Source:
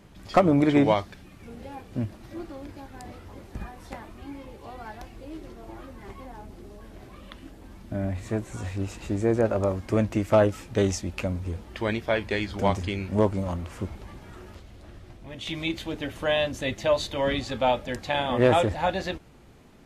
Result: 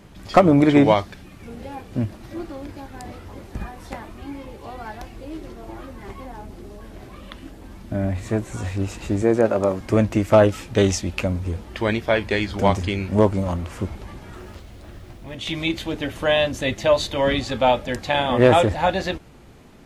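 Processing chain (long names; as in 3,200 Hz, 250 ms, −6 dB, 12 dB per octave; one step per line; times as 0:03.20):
0:09.22–0:09.81: high-pass filter 150 Hz 12 dB per octave
0:10.43–0:11.19: dynamic equaliser 3,200 Hz, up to +4 dB, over −50 dBFS, Q 1.1
0:14.33–0:15.35: background noise pink −65 dBFS
level +5.5 dB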